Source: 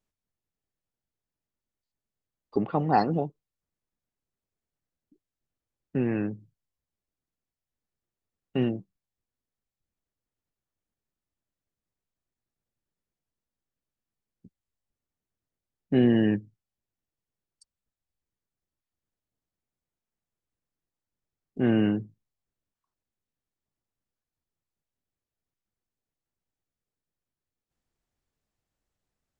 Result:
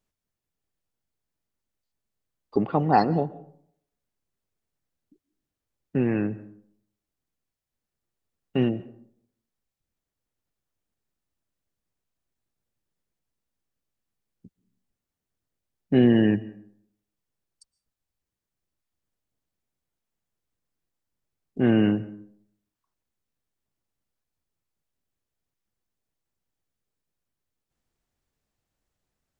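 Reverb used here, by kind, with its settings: digital reverb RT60 0.66 s, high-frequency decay 0.5×, pre-delay 95 ms, DRR 19 dB; gain +3 dB

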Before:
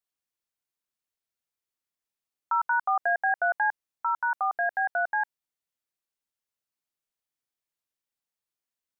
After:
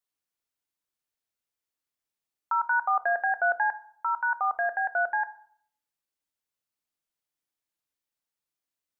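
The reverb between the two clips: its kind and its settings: FDN reverb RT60 0.6 s, low-frequency decay 1.45×, high-frequency decay 0.4×, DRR 12 dB

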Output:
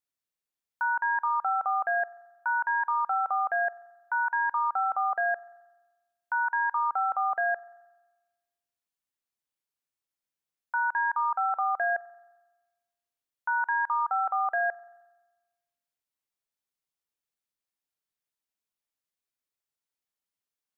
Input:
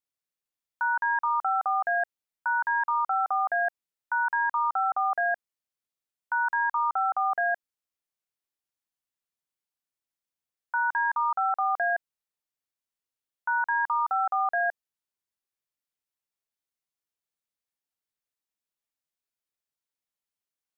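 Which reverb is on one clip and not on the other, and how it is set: spring tank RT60 1.2 s, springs 43 ms, chirp 80 ms, DRR 20 dB; gain -1 dB

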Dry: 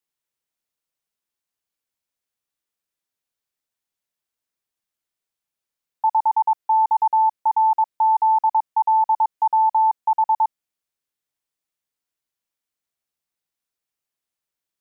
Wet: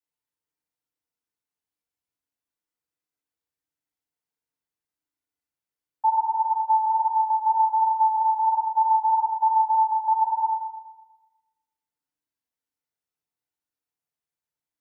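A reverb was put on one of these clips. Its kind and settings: FDN reverb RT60 1.1 s, low-frequency decay 1.55×, high-frequency decay 0.35×, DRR -5.5 dB; gain -11 dB

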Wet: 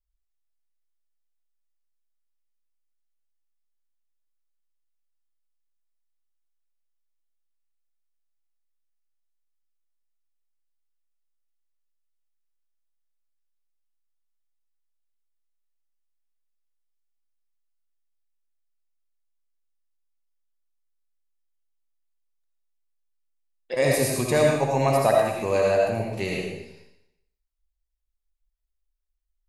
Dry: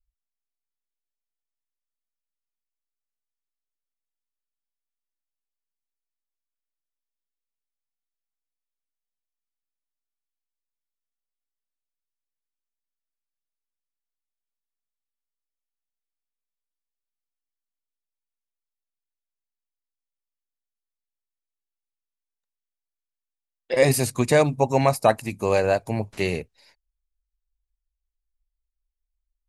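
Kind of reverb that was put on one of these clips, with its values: digital reverb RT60 0.84 s, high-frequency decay 1×, pre-delay 35 ms, DRR -2 dB; gain -5 dB

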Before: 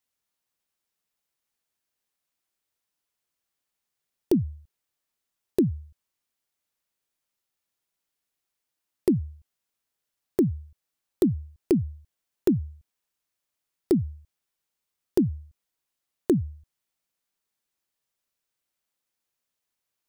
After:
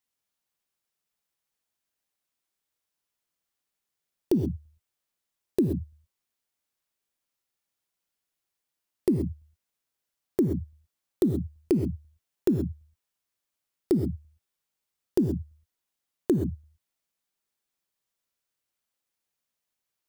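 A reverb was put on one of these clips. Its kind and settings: non-linear reverb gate 0.15 s rising, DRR 7.5 dB; gain -2 dB

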